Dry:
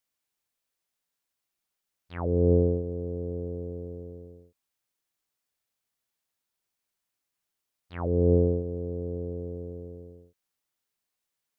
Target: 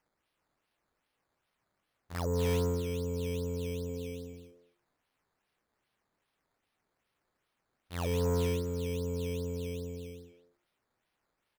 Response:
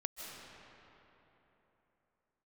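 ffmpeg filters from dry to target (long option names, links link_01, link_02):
-filter_complex "[0:a]bandreject=frequency=50:width_type=h:width=6,bandreject=frequency=100:width_type=h:width=6,bandreject=frequency=150:width_type=h:width=6,bandreject=frequency=200:width_type=h:width=6,bandreject=frequency=250:width_type=h:width=6,bandreject=frequency=300:width_type=h:width=6,bandreject=frequency=350:width_type=h:width=6,asplit=2[link_01][link_02];[link_02]acompressor=threshold=-35dB:ratio=6,volume=1.5dB[link_03];[link_01][link_03]amix=inputs=2:normalize=0,acrusher=samples=11:mix=1:aa=0.000001:lfo=1:lforange=11:lforate=2.5,asoftclip=type=tanh:threshold=-21.5dB,asettb=1/sr,asplit=3[link_04][link_05][link_06];[link_04]atrim=end=3.874[link_07];[link_05]atrim=start=3.87:end=4.33,asetpts=PTS-STARTPTS,afade=type=in:duration=0.004:curve=qsin,afade=type=out:start_time=0.456:duration=0.004:curve=qsin,asplit=2[link_08][link_09];[link_09]adelay=19,volume=-9.5dB[link_10];[link_08][link_10]amix=inputs=2:normalize=0,atrim=end_sample=20286[link_11];[link_06]atrim=start=4.326[link_12];[link_07][link_11]acrossfade=duration=0.004:curve1=hsin:curve2=qsin[link_13];[link_13][link_12]acrossfade=duration=0.004:curve1=qsin:curve2=hsin,asplit=2[link_14][link_15];[link_15]adelay=230,highpass=300,lowpass=3400,asoftclip=type=hard:threshold=-30.5dB,volume=-11dB[link_16];[link_14][link_16]amix=inputs=2:normalize=0,volume=-4.5dB"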